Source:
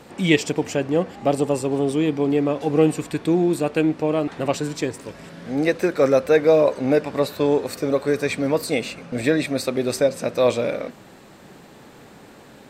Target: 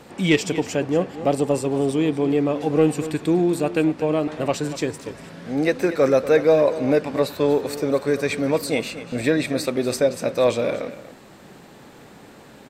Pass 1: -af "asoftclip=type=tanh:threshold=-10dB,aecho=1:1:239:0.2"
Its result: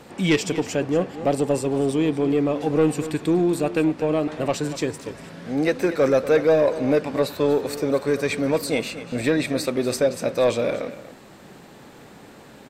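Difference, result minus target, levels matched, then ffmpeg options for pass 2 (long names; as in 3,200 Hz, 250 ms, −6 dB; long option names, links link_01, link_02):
soft clipping: distortion +10 dB
-af "asoftclip=type=tanh:threshold=-3.5dB,aecho=1:1:239:0.2"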